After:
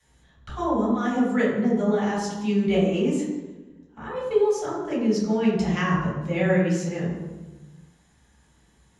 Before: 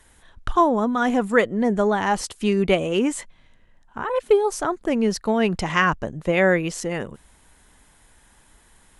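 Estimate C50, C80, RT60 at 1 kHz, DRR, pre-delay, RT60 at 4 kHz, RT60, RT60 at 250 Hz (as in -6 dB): 1.5 dB, 4.5 dB, 1.1 s, -8.0 dB, 3 ms, 0.80 s, 1.2 s, 1.5 s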